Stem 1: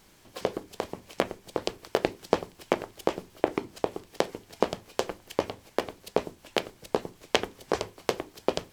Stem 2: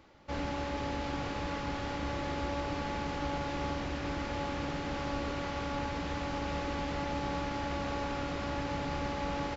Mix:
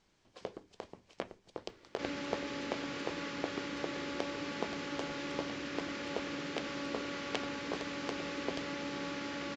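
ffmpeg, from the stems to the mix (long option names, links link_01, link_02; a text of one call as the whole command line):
ffmpeg -i stem1.wav -i stem2.wav -filter_complex "[0:a]lowpass=frequency=6900:width=0.5412,lowpass=frequency=6900:width=1.3066,volume=-13.5dB[link_01];[1:a]equalizer=frequency=790:width_type=o:width=0.78:gain=-13,asoftclip=type=tanh:threshold=-25.5dB,highpass=250,adelay=1700,volume=1dB[link_02];[link_01][link_02]amix=inputs=2:normalize=0" out.wav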